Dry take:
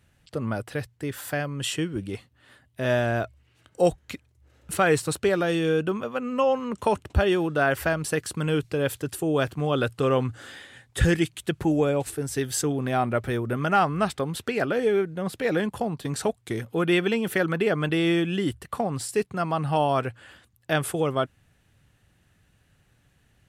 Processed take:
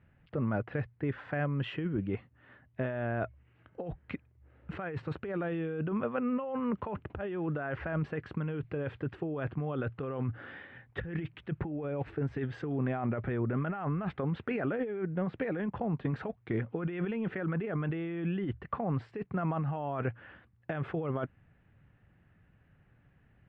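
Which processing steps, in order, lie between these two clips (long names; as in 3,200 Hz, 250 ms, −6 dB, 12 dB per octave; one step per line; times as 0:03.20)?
low-pass filter 2,300 Hz 24 dB per octave
parametric band 170 Hz +3.5 dB 1.2 octaves
compressor whose output falls as the input rises −27 dBFS, ratio −1
level −6 dB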